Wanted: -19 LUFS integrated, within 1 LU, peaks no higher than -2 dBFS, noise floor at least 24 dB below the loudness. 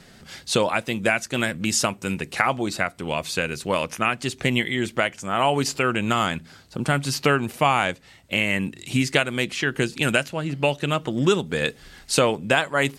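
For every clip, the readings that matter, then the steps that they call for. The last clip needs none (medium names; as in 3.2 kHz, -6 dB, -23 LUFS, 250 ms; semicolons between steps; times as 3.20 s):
loudness -23.5 LUFS; peak level -1.5 dBFS; loudness target -19.0 LUFS
-> trim +4.5 dB; peak limiter -2 dBFS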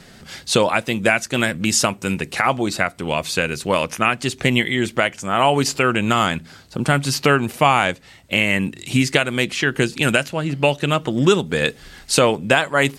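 loudness -19.0 LUFS; peak level -2.0 dBFS; noise floor -46 dBFS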